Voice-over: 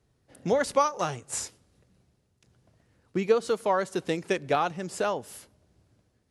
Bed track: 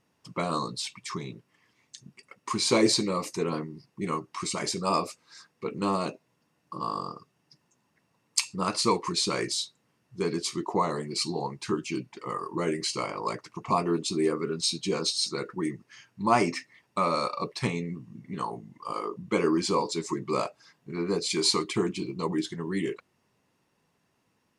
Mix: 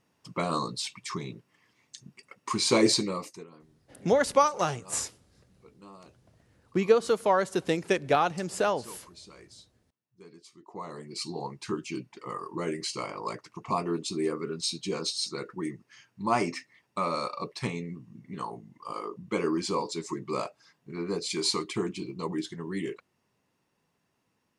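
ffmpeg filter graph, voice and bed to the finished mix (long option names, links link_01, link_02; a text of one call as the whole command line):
ffmpeg -i stem1.wav -i stem2.wav -filter_complex "[0:a]adelay=3600,volume=1.5dB[link_01];[1:a]volume=19dB,afade=type=out:start_time=2.93:duration=0.54:silence=0.0749894,afade=type=in:start_time=10.61:duration=0.87:silence=0.112202[link_02];[link_01][link_02]amix=inputs=2:normalize=0" out.wav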